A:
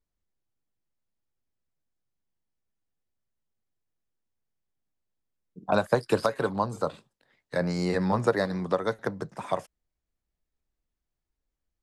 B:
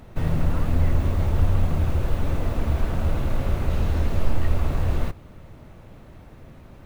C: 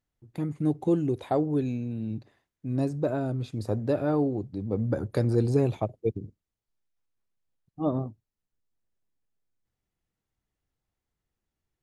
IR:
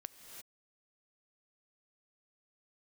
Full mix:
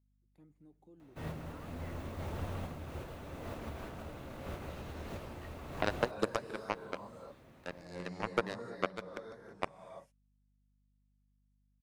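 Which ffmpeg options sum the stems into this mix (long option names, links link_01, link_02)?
-filter_complex "[0:a]adelay=100,volume=-0.5dB,asplit=2[link_01][link_02];[link_02]volume=-9dB[link_03];[1:a]highpass=frequency=260:poles=1,adelay=1000,volume=-10.5dB,asplit=2[link_04][link_05];[link_05]volume=-7dB[link_06];[2:a]highpass=170,alimiter=limit=-22.5dB:level=0:latency=1:release=80,aeval=exprs='val(0)+0.00631*(sin(2*PI*50*n/s)+sin(2*PI*2*50*n/s)/2+sin(2*PI*3*50*n/s)/3+sin(2*PI*4*50*n/s)/4+sin(2*PI*5*50*n/s)/5)':channel_layout=same,volume=-12.5dB,asplit=3[link_07][link_08][link_09];[link_08]volume=-22dB[link_10];[link_09]apad=whole_len=346233[link_11];[link_04][link_11]sidechaincompress=threshold=-48dB:ratio=8:attack=29:release=166[link_12];[link_01][link_07]amix=inputs=2:normalize=0,aeval=exprs='0.355*(cos(1*acos(clip(val(0)/0.355,-1,1)))-cos(1*PI/2))+0.141*(cos(3*acos(clip(val(0)/0.355,-1,1)))-cos(3*PI/2))':channel_layout=same,alimiter=limit=-15dB:level=0:latency=1:release=382,volume=0dB[link_13];[3:a]atrim=start_sample=2205[link_14];[link_03][link_06][link_10]amix=inputs=3:normalize=0[link_15];[link_15][link_14]afir=irnorm=-1:irlink=0[link_16];[link_12][link_13][link_16]amix=inputs=3:normalize=0"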